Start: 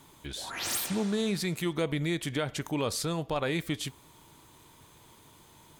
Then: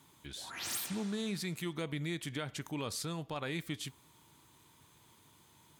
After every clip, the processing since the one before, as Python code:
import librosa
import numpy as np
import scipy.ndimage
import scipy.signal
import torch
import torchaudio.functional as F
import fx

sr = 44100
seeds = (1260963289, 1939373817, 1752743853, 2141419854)

y = scipy.signal.sosfilt(scipy.signal.butter(2, 71.0, 'highpass', fs=sr, output='sos'), x)
y = fx.peak_eq(y, sr, hz=540.0, db=-5.0, octaves=1.3)
y = F.gain(torch.from_numpy(y), -6.0).numpy()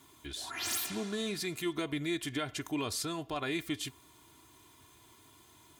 y = x + 0.62 * np.pad(x, (int(2.9 * sr / 1000.0), 0))[:len(x)]
y = F.gain(torch.from_numpy(y), 2.5).numpy()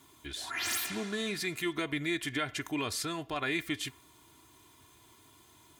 y = fx.dynamic_eq(x, sr, hz=1900.0, q=1.4, threshold_db=-55.0, ratio=4.0, max_db=7)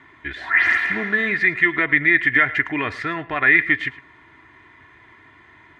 y = fx.lowpass_res(x, sr, hz=1900.0, q=9.4)
y = y + 10.0 ** (-18.5 / 20.0) * np.pad(y, (int(108 * sr / 1000.0), 0))[:len(y)]
y = F.gain(torch.from_numpy(y), 8.0).numpy()